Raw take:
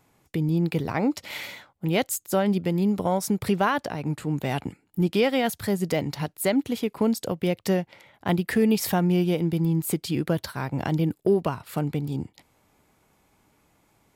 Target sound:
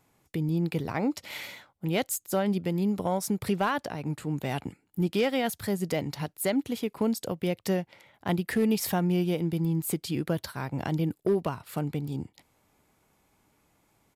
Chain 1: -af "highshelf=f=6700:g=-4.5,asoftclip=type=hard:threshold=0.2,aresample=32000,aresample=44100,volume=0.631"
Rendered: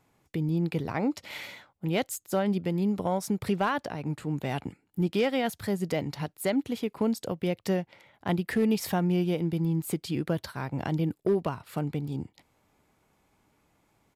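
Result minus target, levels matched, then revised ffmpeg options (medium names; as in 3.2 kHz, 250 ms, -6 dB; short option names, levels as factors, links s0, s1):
8 kHz band -4.0 dB
-af "highshelf=f=6700:g=2.5,asoftclip=type=hard:threshold=0.2,aresample=32000,aresample=44100,volume=0.631"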